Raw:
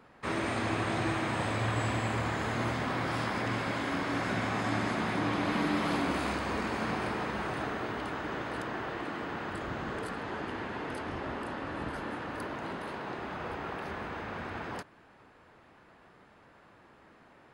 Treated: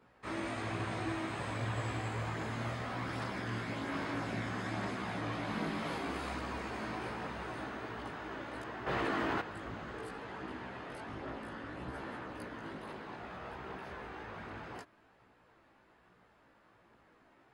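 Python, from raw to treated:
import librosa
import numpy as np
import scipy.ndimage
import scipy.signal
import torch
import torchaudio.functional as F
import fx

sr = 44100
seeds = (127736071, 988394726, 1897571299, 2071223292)

y = fx.chorus_voices(x, sr, voices=2, hz=0.62, base_ms=17, depth_ms=1.8, mix_pct=50)
y = fx.env_flatten(y, sr, amount_pct=100, at=(8.86, 9.4), fade=0.02)
y = y * 10.0 ** (-4.0 / 20.0)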